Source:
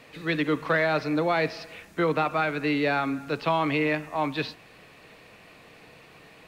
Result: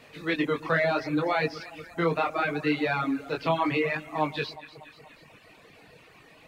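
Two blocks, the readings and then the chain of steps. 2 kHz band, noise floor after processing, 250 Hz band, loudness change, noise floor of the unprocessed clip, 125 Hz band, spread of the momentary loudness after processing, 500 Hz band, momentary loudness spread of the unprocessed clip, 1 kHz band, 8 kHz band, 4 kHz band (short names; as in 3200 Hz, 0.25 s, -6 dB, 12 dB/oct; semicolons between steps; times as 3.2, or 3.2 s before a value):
-1.5 dB, -55 dBFS, -1.5 dB, -1.5 dB, -52 dBFS, -1.5 dB, 10 LU, -1.5 dB, 6 LU, -1.5 dB, n/a, -1.5 dB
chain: chorus 0.72 Hz, delay 19.5 ms, depth 4.8 ms; echo with dull and thin repeats by turns 0.12 s, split 1100 Hz, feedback 71%, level -8 dB; reverb removal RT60 1.1 s; gain +2.5 dB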